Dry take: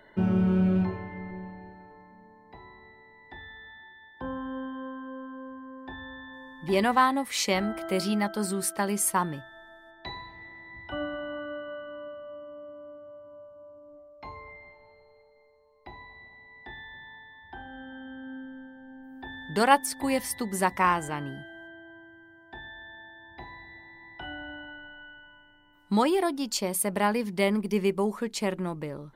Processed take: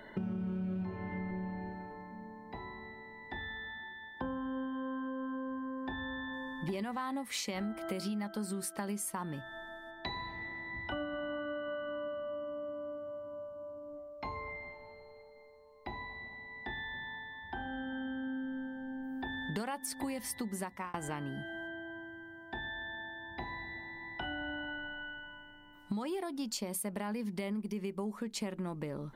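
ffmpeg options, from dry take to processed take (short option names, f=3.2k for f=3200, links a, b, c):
-filter_complex "[0:a]asplit=2[a][b];[a]atrim=end=20.94,asetpts=PTS-STARTPTS,afade=t=out:st=20.37:d=0.57[c];[b]atrim=start=20.94,asetpts=PTS-STARTPTS,afade=t=in:d=0.004:c=hsin[d];[c][d]concat=n=2:v=0:a=1,equalizer=f=220:w=4:g=6.5,alimiter=limit=-18.5dB:level=0:latency=1:release=107,acompressor=threshold=-39dB:ratio=6,volume=3.5dB"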